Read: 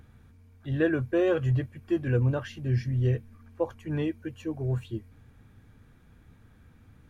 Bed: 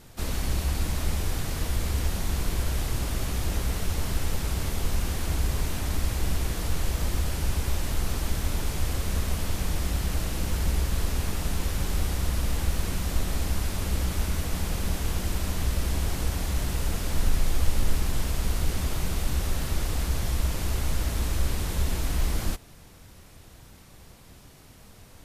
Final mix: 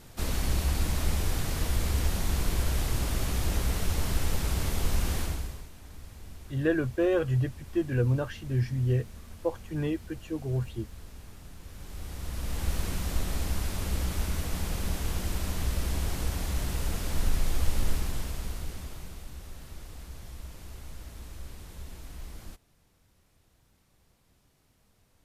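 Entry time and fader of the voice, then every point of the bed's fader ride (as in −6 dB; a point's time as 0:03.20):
5.85 s, −1.0 dB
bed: 0:05.20 −0.5 dB
0:05.70 −19.5 dB
0:11.60 −19.5 dB
0:12.71 −3 dB
0:17.89 −3 dB
0:19.31 −16.5 dB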